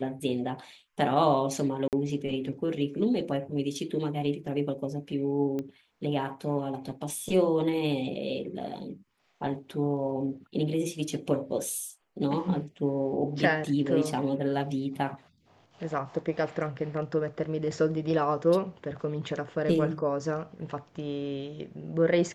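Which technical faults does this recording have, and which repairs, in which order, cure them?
1.88–1.93 s: dropout 48 ms
5.59 s: pop -22 dBFS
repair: de-click; interpolate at 1.88 s, 48 ms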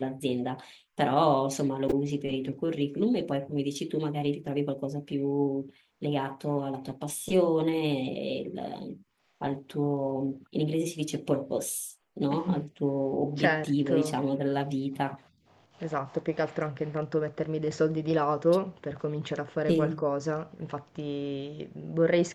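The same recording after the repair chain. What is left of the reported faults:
nothing left

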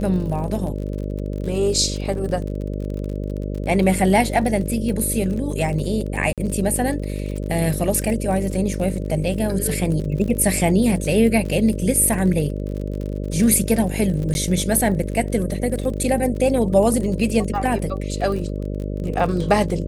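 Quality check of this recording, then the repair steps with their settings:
buzz 50 Hz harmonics 12 -26 dBFS
crackle 40 per s -28 dBFS
6.33–6.38 s: dropout 47 ms
14.34–14.35 s: dropout 11 ms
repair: de-click; de-hum 50 Hz, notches 12; interpolate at 6.33 s, 47 ms; interpolate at 14.34 s, 11 ms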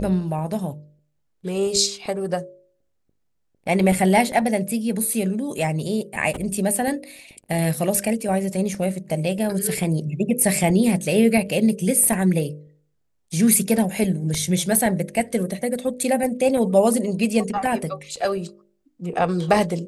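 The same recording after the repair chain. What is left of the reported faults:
nothing left

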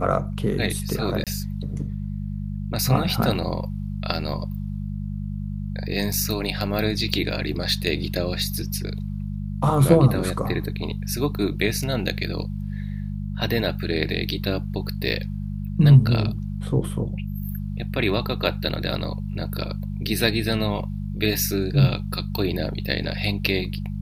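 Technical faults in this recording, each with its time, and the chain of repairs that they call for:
hum 50 Hz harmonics 4 -29 dBFS
1.24–1.27 s: dropout 27 ms
6.13 s: dropout 3.7 ms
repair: de-hum 50 Hz, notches 4; interpolate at 1.24 s, 27 ms; interpolate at 6.13 s, 3.7 ms

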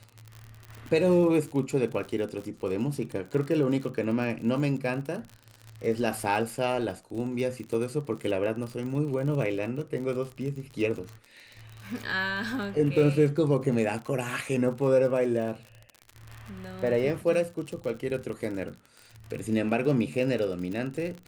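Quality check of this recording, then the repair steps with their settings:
crackle 52 per s -34 dBFS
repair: de-click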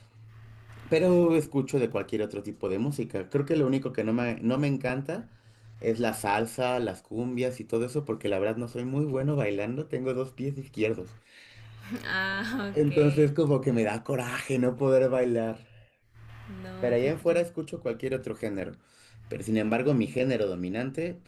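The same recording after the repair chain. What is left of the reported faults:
nothing left

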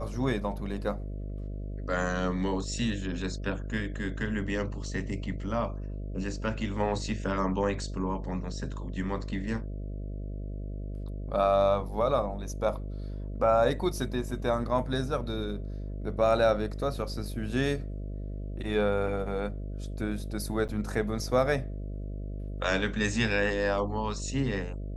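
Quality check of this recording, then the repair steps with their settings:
buzz 50 Hz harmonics 13 -36 dBFS
20.68–20.69 s: dropout 8.3 ms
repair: de-hum 50 Hz, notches 13; interpolate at 20.68 s, 8.3 ms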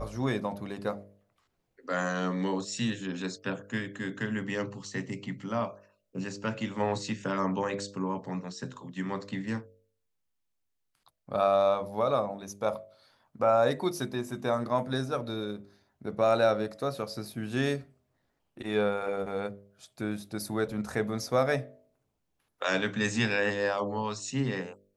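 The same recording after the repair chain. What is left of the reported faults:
nothing left

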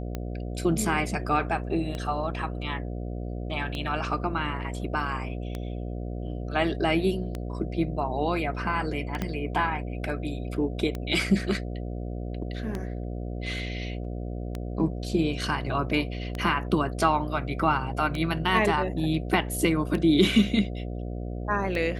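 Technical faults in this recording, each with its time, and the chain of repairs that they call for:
buzz 60 Hz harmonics 12 -33 dBFS
tick 33 1/3 rpm -18 dBFS
9.22 s: pop -15 dBFS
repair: de-click; de-hum 60 Hz, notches 12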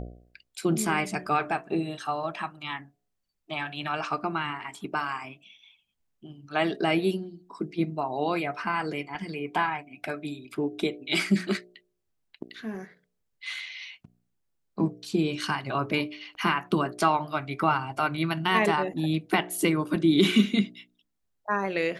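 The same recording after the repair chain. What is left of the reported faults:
9.22 s: pop

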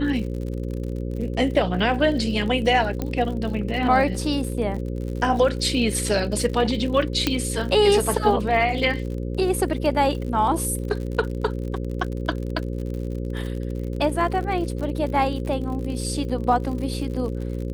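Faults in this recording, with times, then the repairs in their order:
buzz 60 Hz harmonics 9 -28 dBFS
crackle 59 per s -31 dBFS
3.02 s: pop -13 dBFS
7.27 s: pop -5 dBFS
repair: de-click; de-hum 60 Hz, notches 9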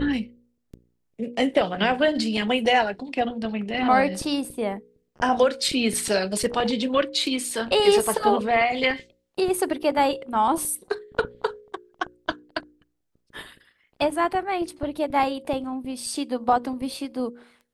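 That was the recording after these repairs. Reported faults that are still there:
7.27 s: pop

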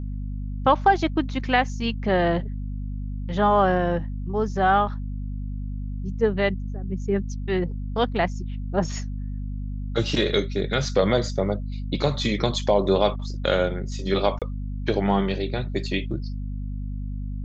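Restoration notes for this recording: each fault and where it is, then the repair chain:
hum 50 Hz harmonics 5 -30 dBFS
14.39–14.42 s: dropout 27 ms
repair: de-hum 50 Hz, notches 5; interpolate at 14.39 s, 27 ms

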